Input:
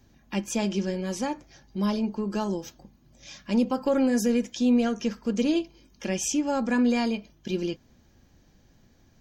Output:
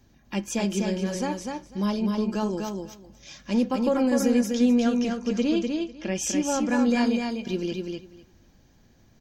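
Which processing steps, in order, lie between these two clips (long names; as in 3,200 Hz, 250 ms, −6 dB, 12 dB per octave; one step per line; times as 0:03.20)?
0:05.04–0:06.14: low-pass filter 9,700 Hz → 3,800 Hz 12 dB per octave
on a send: repeating echo 249 ms, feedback 15%, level −4 dB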